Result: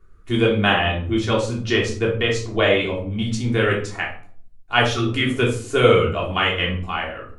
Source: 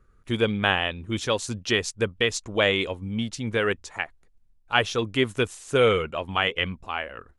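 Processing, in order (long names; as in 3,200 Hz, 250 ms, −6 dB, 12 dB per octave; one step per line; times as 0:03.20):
0:00.72–0:03.11: low-pass filter 3,400 Hz 6 dB per octave
0:04.98–0:05.29: healed spectral selection 380–1,100 Hz before
rectangular room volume 490 cubic metres, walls furnished, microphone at 3.3 metres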